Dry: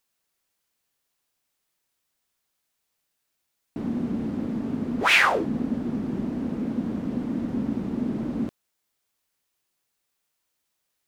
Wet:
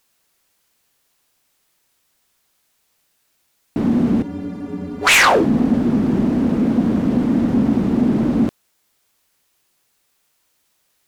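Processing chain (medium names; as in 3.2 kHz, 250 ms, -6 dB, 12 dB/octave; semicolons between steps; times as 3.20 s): 4.22–5.07 s: inharmonic resonator 86 Hz, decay 0.37 s, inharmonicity 0.03; in parallel at -8 dB: sine folder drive 14 dB, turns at -4 dBFS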